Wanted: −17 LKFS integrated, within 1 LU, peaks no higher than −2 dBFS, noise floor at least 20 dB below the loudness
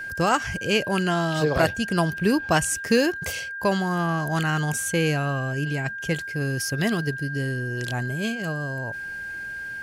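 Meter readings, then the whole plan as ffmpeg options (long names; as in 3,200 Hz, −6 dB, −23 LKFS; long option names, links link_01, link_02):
interfering tone 1,600 Hz; level of the tone −31 dBFS; integrated loudness −25.0 LKFS; sample peak −7.5 dBFS; target loudness −17.0 LKFS
→ -af "bandreject=frequency=1600:width=30"
-af "volume=8dB,alimiter=limit=-2dB:level=0:latency=1"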